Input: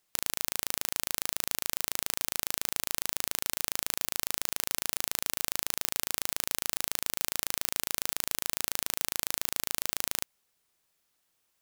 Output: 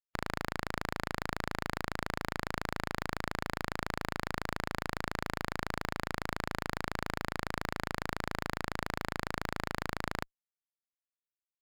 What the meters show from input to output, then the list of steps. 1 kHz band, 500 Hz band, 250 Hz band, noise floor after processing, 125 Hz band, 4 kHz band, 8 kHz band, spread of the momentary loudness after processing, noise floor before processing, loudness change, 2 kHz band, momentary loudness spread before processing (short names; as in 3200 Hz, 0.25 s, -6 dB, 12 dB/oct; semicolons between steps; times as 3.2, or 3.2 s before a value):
+6.0 dB, +5.5 dB, +8.5 dB, under -85 dBFS, +11.0 dB, -8.5 dB, -18.5 dB, 0 LU, -76 dBFS, -6.0 dB, +2.5 dB, 0 LU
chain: per-bin expansion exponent 3; LPF 2100 Hz 12 dB/oct; low shelf 69 Hz +3.5 dB; in parallel at -10 dB: fuzz box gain 53 dB, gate -59 dBFS; on the sum: gain +1 dB